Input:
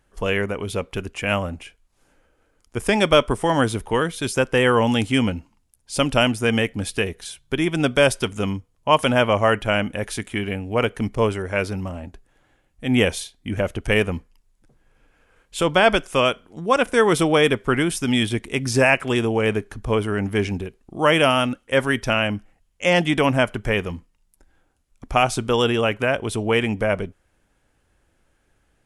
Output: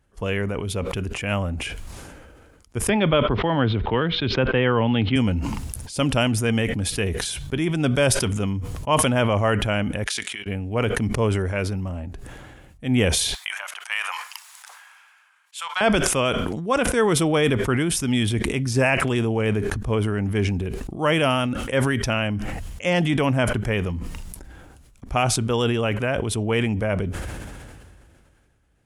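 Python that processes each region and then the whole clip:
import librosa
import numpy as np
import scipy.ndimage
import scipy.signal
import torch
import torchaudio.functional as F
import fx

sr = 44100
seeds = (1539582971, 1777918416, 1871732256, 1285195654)

y = fx.chain(x, sr, fx.steep_lowpass(hz=4000.0, slope=48),
    fx.band_squash(depth_pct=40), at=(2.89, 5.16))
y = fx.chain(y, sr, fx.lowpass(hz=4500.0, slope=12),
    fx.differentiator(),
    fx.level_steps(step_db=15), at=(10.04, 10.46))
y = fx.chain(y, sr, fx.steep_highpass(hz=900.0, slope=36),
    fx.doppler_dist(depth_ms=0.13), at=(13.34, 15.81))
y = scipy.signal.sosfilt(scipy.signal.butter(2, 49.0, 'highpass', fs=sr, output='sos'), y)
y = fx.low_shelf(y, sr, hz=170.0, db=9.5)
y = fx.sustainer(y, sr, db_per_s=26.0)
y = y * librosa.db_to_amplitude(-5.0)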